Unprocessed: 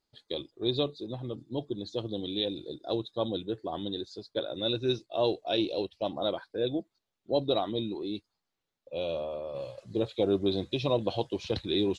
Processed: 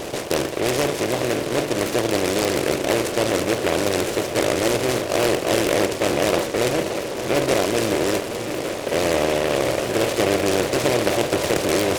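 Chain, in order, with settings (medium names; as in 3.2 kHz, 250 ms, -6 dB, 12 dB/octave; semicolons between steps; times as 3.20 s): spectral levelling over time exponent 0.2; feedback echo behind a low-pass 575 ms, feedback 84%, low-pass 3.9 kHz, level -12 dB; delay time shaken by noise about 1.7 kHz, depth 0.097 ms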